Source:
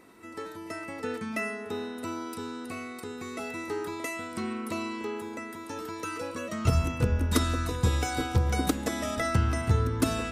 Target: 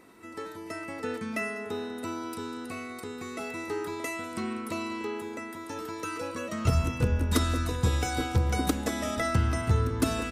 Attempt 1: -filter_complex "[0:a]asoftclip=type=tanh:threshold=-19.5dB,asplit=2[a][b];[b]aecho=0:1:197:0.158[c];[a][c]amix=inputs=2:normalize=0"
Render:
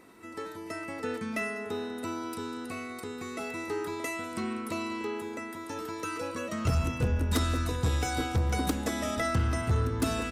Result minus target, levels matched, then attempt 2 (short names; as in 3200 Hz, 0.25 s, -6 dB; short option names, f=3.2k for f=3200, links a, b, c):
soft clip: distortion +15 dB
-filter_complex "[0:a]asoftclip=type=tanh:threshold=-9dB,asplit=2[a][b];[b]aecho=0:1:197:0.158[c];[a][c]amix=inputs=2:normalize=0"